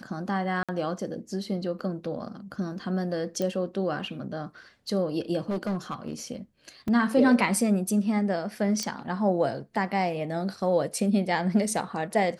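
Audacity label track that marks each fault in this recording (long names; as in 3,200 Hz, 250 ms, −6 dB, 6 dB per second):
0.630000	0.690000	drop-out 56 ms
3.420000	3.420000	click −17 dBFS
5.490000	6.130000	clipping −25.5 dBFS
6.880000	6.880000	drop-out 3 ms
8.830000	8.830000	click −17 dBFS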